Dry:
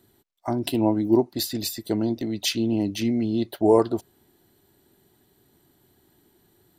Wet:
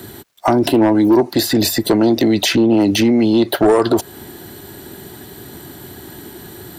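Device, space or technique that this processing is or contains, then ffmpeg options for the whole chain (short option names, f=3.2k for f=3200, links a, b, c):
mastering chain: -filter_complex "[0:a]highpass=43,equalizer=f=1.6k:t=o:w=0.44:g=3.5,acrossover=split=320|1600[a][b][c];[a]acompressor=threshold=-37dB:ratio=4[d];[b]acompressor=threshold=-25dB:ratio=4[e];[c]acompressor=threshold=-43dB:ratio=4[f];[d][e][f]amix=inputs=3:normalize=0,acompressor=threshold=-36dB:ratio=1.5,asoftclip=type=tanh:threshold=-24.5dB,asoftclip=type=hard:threshold=-28dB,alimiter=level_in=32.5dB:limit=-1dB:release=50:level=0:latency=1,volume=-6dB"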